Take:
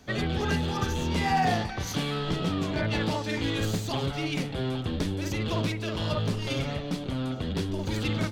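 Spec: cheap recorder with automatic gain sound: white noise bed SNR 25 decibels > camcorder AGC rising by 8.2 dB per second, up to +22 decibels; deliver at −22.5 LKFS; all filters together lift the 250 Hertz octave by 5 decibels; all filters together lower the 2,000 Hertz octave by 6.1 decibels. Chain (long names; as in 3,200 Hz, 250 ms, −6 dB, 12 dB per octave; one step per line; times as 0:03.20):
parametric band 250 Hz +6.5 dB
parametric band 2,000 Hz −8 dB
white noise bed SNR 25 dB
camcorder AGC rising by 8.2 dB per second, up to +22 dB
level +4.5 dB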